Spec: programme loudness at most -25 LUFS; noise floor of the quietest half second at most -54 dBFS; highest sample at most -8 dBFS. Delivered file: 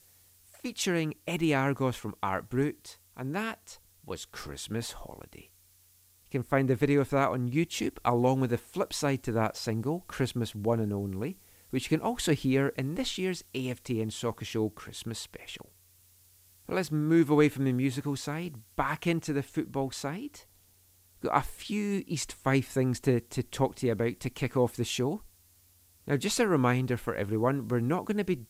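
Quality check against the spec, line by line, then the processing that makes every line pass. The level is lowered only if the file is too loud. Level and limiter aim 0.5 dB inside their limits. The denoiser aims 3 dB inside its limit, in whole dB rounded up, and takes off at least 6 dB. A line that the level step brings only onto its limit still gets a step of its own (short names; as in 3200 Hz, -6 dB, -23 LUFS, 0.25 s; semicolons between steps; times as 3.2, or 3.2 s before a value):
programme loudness -30.5 LUFS: OK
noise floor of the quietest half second -63 dBFS: OK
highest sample -9.0 dBFS: OK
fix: none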